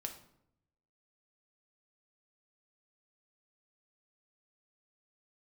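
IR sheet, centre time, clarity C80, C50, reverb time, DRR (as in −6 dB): 14 ms, 13.0 dB, 9.5 dB, 0.75 s, 3.5 dB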